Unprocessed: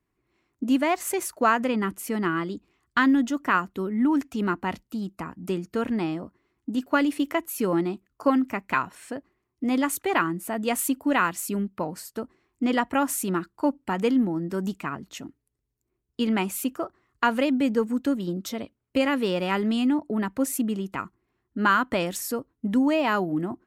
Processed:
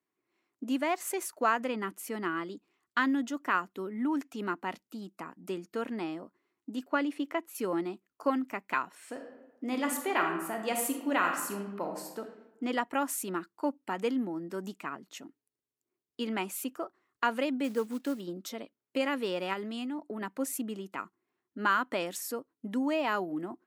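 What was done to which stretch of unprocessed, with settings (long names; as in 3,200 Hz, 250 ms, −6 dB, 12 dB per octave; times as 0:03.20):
0:06.87–0:07.55: low-pass filter 3,300 Hz 6 dB per octave
0:09.00–0:12.19: thrown reverb, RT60 1 s, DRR 3 dB
0:17.64–0:18.21: log-companded quantiser 6 bits
0:19.53–0:20.21: downward compressor, threshold −24 dBFS
whole clip: high-pass filter 270 Hz 12 dB per octave; level −6 dB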